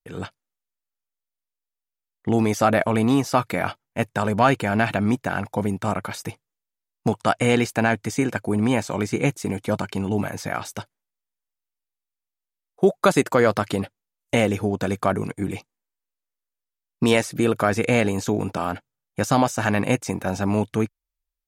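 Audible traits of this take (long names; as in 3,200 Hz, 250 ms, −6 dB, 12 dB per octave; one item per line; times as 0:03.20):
background noise floor −87 dBFS
spectral slope −5.5 dB per octave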